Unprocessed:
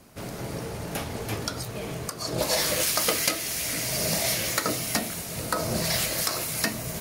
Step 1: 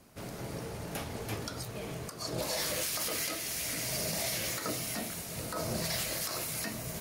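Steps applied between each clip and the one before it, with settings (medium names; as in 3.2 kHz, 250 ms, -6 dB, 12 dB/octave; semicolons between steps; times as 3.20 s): peak limiter -17.5 dBFS, peak gain reduction 11 dB; trim -6 dB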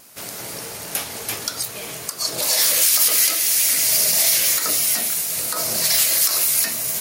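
tilt EQ +3.5 dB/octave; vibrato 6.1 Hz 30 cents; trim +8 dB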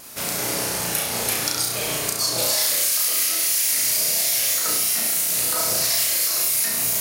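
compression 6:1, threshold -26 dBFS, peak gain reduction 13 dB; on a send: flutter echo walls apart 5.8 m, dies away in 0.69 s; on the sum: trim +4.5 dB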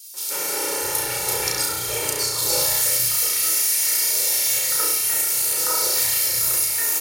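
comb 2.2 ms, depth 85%; three bands offset in time highs, mids, lows 140/660 ms, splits 200/3400 Hz; trim -1.5 dB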